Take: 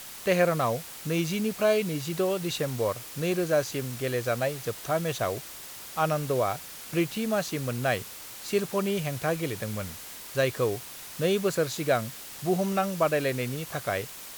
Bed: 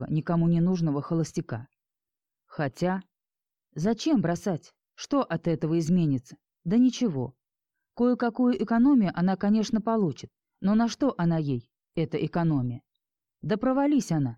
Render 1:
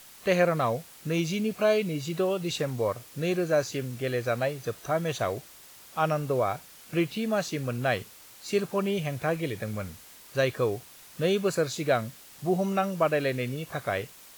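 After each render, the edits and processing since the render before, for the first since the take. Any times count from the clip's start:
noise reduction from a noise print 8 dB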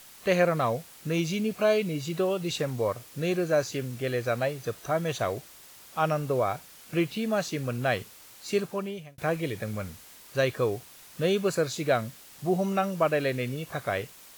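0:08.54–0:09.18: fade out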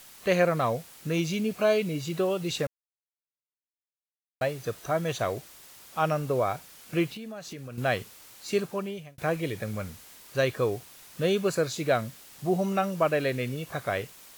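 0:02.67–0:04.41: silence
0:07.08–0:07.78: downward compressor, threshold −37 dBFS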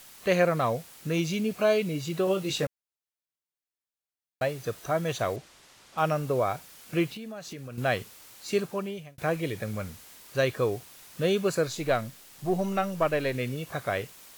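0:02.25–0:02.65: double-tracking delay 21 ms −5 dB
0:05.36–0:05.98: high-frequency loss of the air 60 metres
0:11.67–0:13.35: gain on one half-wave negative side −3 dB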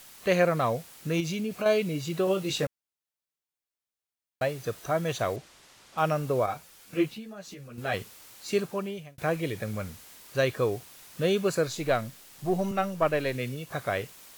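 0:01.20–0:01.66: downward compressor 2.5 to 1, threshold −28 dBFS
0:06.46–0:07.94: string-ensemble chorus
0:12.71–0:13.71: multiband upward and downward expander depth 40%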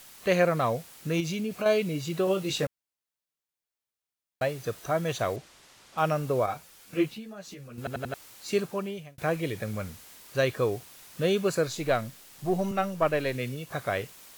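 0:07.78: stutter in place 0.09 s, 4 plays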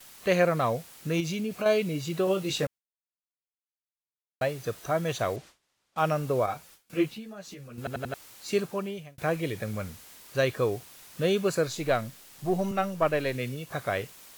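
noise gate with hold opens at −41 dBFS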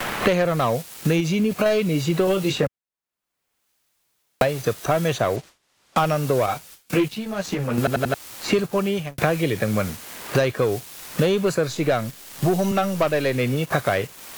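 leveller curve on the samples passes 2
multiband upward and downward compressor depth 100%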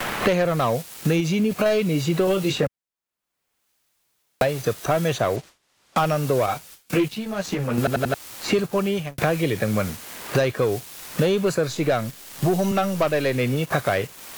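soft clipping −7 dBFS, distortion −25 dB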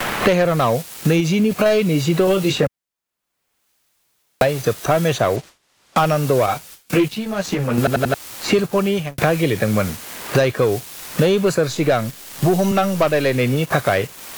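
level +4.5 dB

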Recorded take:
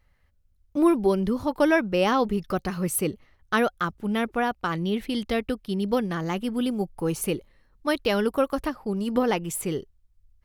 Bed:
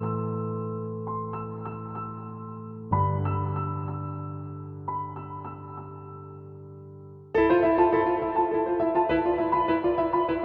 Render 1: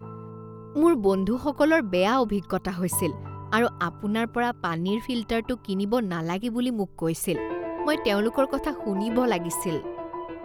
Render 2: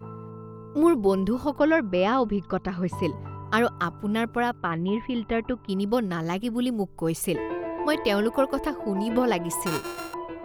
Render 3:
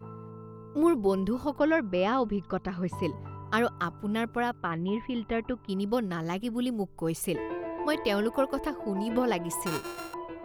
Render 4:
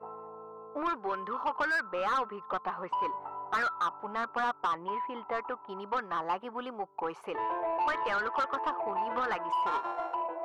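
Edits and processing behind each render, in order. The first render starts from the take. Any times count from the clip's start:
mix in bed −10.5 dB
0:01.58–0:03.03: high-frequency loss of the air 170 metres; 0:04.58–0:05.69: low-pass filter 2,800 Hz 24 dB per octave; 0:09.66–0:10.14: samples sorted by size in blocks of 32 samples
level −4 dB
envelope filter 670–1,500 Hz, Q 3.2, up, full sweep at −21.5 dBFS; mid-hump overdrive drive 23 dB, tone 1,600 Hz, clips at −19.5 dBFS

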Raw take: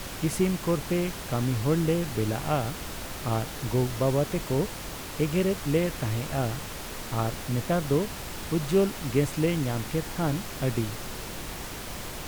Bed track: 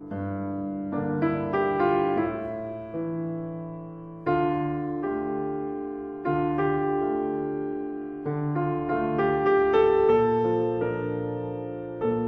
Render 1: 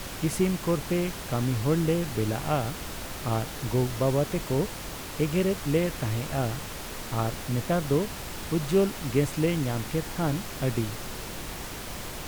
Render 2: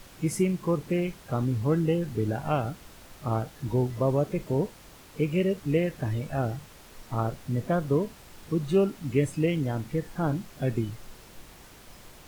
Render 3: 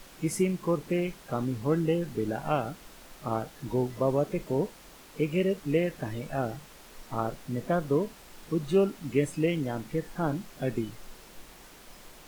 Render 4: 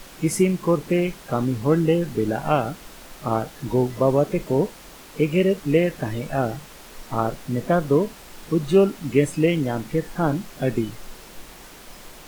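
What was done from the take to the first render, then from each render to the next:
no processing that can be heard
noise reduction from a noise print 13 dB
parametric band 93 Hz −12 dB 1 octave
level +7.5 dB

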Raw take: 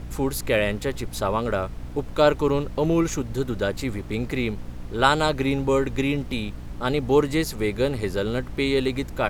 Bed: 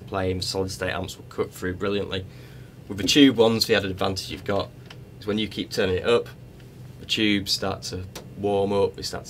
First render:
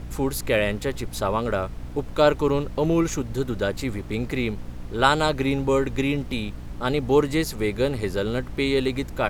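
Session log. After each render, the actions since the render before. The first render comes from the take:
no processing that can be heard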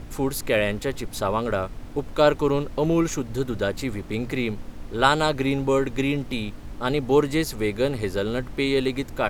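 mains-hum notches 60/120/180 Hz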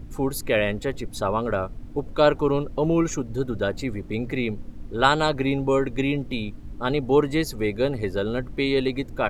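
broadband denoise 11 dB, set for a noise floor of −38 dBFS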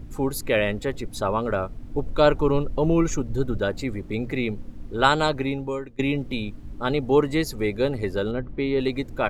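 0:01.90–0:03.58: low-shelf EQ 82 Hz +8.5 dB
0:05.26–0:05.99: fade out, to −21.5 dB
0:08.31–0:08.80: head-to-tape spacing loss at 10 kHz 27 dB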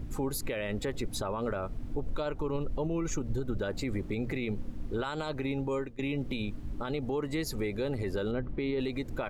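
downward compressor 6 to 1, threshold −25 dBFS, peak gain reduction 12.5 dB
brickwall limiter −24 dBFS, peak gain reduction 10.5 dB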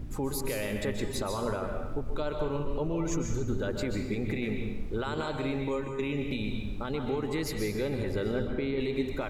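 dense smooth reverb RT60 0.95 s, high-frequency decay 0.9×, pre-delay 115 ms, DRR 3 dB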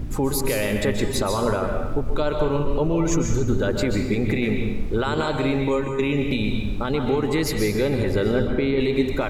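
level +9.5 dB

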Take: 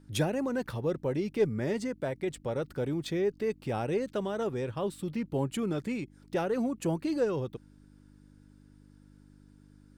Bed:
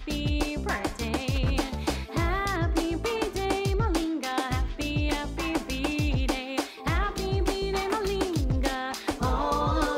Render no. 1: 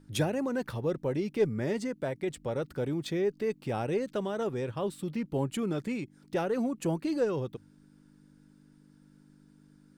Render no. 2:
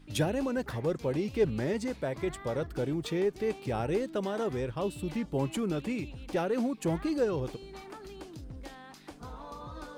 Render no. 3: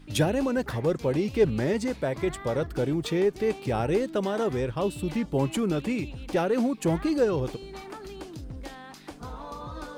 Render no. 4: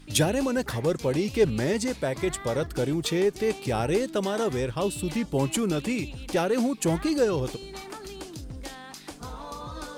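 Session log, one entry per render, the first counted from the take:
hum removal 50 Hz, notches 2
mix in bed −18 dB
level +5 dB
parametric band 9,000 Hz +9 dB 2.4 octaves

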